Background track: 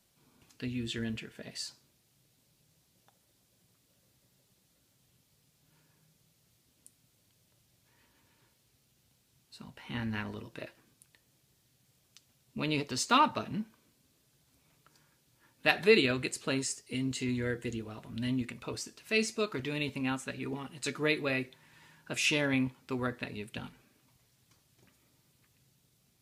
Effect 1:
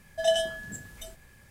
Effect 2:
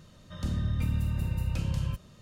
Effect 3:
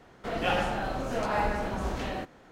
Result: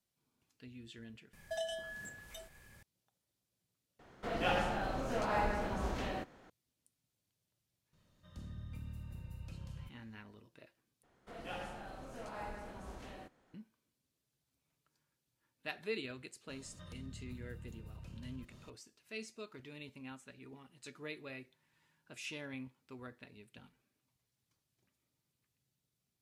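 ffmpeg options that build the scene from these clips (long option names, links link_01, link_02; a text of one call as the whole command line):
ffmpeg -i bed.wav -i cue0.wav -i cue1.wav -i cue2.wav -filter_complex "[3:a]asplit=2[link_01][link_02];[2:a]asplit=2[link_03][link_04];[0:a]volume=-16dB[link_05];[1:a]acrossover=split=430|3600[link_06][link_07][link_08];[link_06]acompressor=threshold=-54dB:ratio=4[link_09];[link_07]acompressor=threshold=-36dB:ratio=5[link_10];[link_08]acompressor=threshold=-52dB:ratio=3[link_11];[link_09][link_10][link_11]amix=inputs=3:normalize=0[link_12];[link_02]equalizer=frequency=10000:width=1.2:gain=7[link_13];[link_04]acompressor=threshold=-44dB:ratio=6:attack=3.2:release=140:knee=1:detection=peak[link_14];[link_05]asplit=4[link_15][link_16][link_17][link_18];[link_15]atrim=end=1.334[link_19];[link_12]atrim=end=1.5,asetpts=PTS-STARTPTS,volume=-3.5dB[link_20];[link_16]atrim=start=2.826:end=3.994[link_21];[link_01]atrim=end=2.51,asetpts=PTS-STARTPTS,volume=-5.5dB[link_22];[link_17]atrim=start=6.496:end=11.034[link_23];[link_13]atrim=end=2.51,asetpts=PTS-STARTPTS,volume=-17dB[link_24];[link_18]atrim=start=13.536[link_25];[link_03]atrim=end=2.21,asetpts=PTS-STARTPTS,volume=-17.5dB,afade=type=in:duration=0.004:curve=hsin,afade=type=out:start_time=2.206:duration=0.004:curve=hsin,adelay=7930[link_26];[link_14]atrim=end=2.21,asetpts=PTS-STARTPTS,volume=-4dB,afade=type=in:duration=0.004:curve=hsin,afade=type=out:start_time=2.206:duration=0.004:curve=hsin,adelay=16490[link_27];[link_19][link_20]acrossfade=duration=0.004:curve1=hsin:curve2=hsin[link_28];[link_28][link_21]acrossfade=duration=0.004:curve1=hsin:curve2=hsin[link_29];[link_29][link_22]acrossfade=duration=0.004:curve1=hsin:curve2=hsin[link_30];[link_30][link_23]acrossfade=duration=0.004:curve1=hsin:curve2=hsin[link_31];[link_31][link_24]acrossfade=duration=0.004:curve1=hsin:curve2=hsin[link_32];[link_32][link_25]acrossfade=duration=0.004:curve1=hsin:curve2=hsin[link_33];[link_33][link_26][link_27]amix=inputs=3:normalize=0" out.wav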